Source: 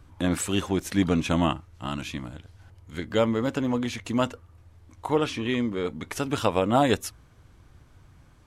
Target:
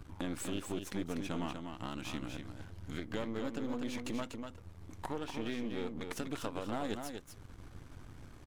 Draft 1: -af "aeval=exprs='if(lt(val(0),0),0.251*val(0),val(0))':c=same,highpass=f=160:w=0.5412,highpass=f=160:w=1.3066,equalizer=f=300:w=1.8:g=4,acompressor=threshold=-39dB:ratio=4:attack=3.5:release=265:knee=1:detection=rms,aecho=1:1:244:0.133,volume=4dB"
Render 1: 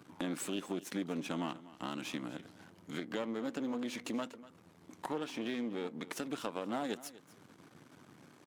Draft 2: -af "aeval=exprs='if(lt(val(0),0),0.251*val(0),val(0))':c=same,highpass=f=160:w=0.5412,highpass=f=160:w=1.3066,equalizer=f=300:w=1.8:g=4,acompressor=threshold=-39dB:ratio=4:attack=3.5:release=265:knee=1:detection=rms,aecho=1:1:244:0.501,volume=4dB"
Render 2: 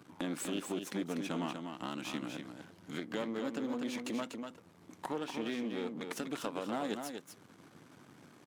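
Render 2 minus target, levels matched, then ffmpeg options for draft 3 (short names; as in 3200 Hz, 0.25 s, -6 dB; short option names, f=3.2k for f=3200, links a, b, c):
125 Hz band -5.5 dB
-af "aeval=exprs='if(lt(val(0),0),0.251*val(0),val(0))':c=same,equalizer=f=300:w=1.8:g=4,acompressor=threshold=-39dB:ratio=4:attack=3.5:release=265:knee=1:detection=rms,aecho=1:1:244:0.501,volume=4dB"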